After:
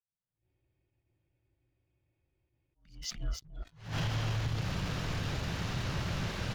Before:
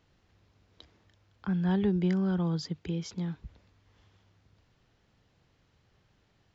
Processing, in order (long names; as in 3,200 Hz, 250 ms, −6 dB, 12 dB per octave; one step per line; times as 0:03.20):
camcorder AGC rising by 52 dB per second
on a send: single-tap delay 290 ms −7 dB
on the sum: downward compressor 12 to 1, threshold −31 dBFS, peak gain reduction 13.5 dB
noise reduction from a noise print of the clip's start 29 dB
low-pass that shuts in the quiet parts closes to 1,700 Hz, open at −33 dBFS
frequency shifter −210 Hz
leveller curve on the samples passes 3
frozen spectrum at 0:00.39, 2.38 s
level that may rise only so fast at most 130 dB per second
level −8 dB